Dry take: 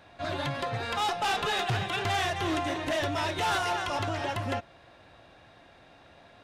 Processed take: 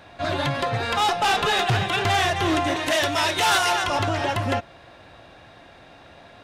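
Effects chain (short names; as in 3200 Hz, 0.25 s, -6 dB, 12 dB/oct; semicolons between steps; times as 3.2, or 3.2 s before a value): 2.76–3.84 tilt +2 dB/oct; gain +7.5 dB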